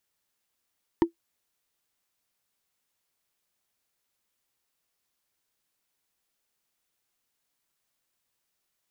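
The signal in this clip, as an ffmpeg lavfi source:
-f lavfi -i "aevalsrc='0.251*pow(10,-3*t/0.11)*sin(2*PI*336*t)+0.112*pow(10,-3*t/0.033)*sin(2*PI*926.4*t)+0.0501*pow(10,-3*t/0.015)*sin(2*PI*1815.7*t)+0.0224*pow(10,-3*t/0.008)*sin(2*PI*3001.5*t)+0.01*pow(10,-3*t/0.005)*sin(2*PI*4482.2*t)':d=0.45:s=44100"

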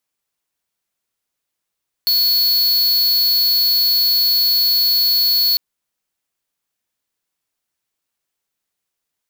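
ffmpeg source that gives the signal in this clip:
-f lavfi -i "aevalsrc='0.178*(2*lt(mod(4390*t,1),0.5)-1)':d=3.5:s=44100"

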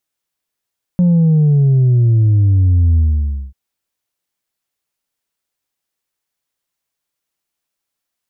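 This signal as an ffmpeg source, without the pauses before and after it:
-f lavfi -i "aevalsrc='0.376*clip((2.54-t)/0.56,0,1)*tanh(1.26*sin(2*PI*180*2.54/log(65/180)*(exp(log(65/180)*t/2.54)-1)))/tanh(1.26)':d=2.54:s=44100"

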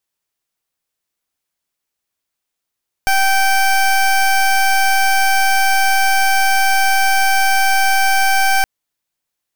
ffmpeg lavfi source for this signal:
-f lavfi -i "aevalsrc='0.224*(2*lt(mod(777*t,1),0.21)-1)':d=5.57:s=44100"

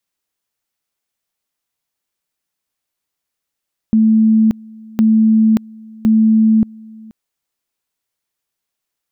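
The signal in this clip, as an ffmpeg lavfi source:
-f lavfi -i "aevalsrc='pow(10,(-7.5-25.5*gte(mod(t,1.06),0.58))/20)*sin(2*PI*220*t)':d=3.18:s=44100"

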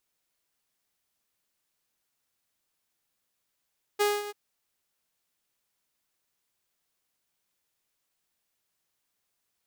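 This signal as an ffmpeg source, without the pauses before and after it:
-f lavfi -i "aevalsrc='0.119*(2*mod(413*t,1)-1)':d=0.338:s=44100,afade=t=in:d=0.02,afade=t=out:st=0.02:d=0.217:silence=0.2,afade=t=out:st=0.31:d=0.028"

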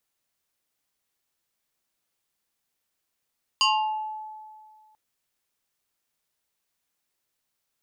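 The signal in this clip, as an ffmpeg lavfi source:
-f lavfi -i "aevalsrc='0.15*pow(10,-3*t/1.98)*sin(2*PI*863*t+2.8*pow(10,-3*t/0.71)*sin(2*PI*2.24*863*t))':d=1.34:s=44100"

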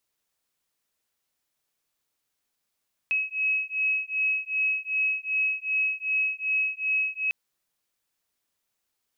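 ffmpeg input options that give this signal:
-f lavfi -i "aevalsrc='0.0447*(sin(2*PI*2560*t)+sin(2*PI*2562.6*t))':d=4.2:s=44100"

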